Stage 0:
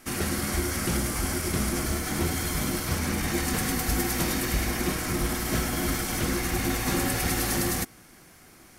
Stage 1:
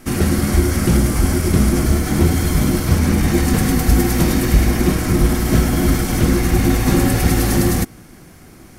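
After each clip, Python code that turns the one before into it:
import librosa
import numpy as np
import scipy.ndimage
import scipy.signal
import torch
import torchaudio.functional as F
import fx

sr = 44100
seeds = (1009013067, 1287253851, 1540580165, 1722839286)

y = fx.low_shelf(x, sr, hz=480.0, db=11.0)
y = y * 10.0 ** (4.5 / 20.0)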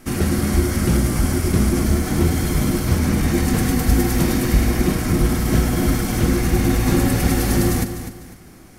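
y = fx.echo_feedback(x, sr, ms=250, feedback_pct=32, wet_db=-10.5)
y = y * 10.0 ** (-3.0 / 20.0)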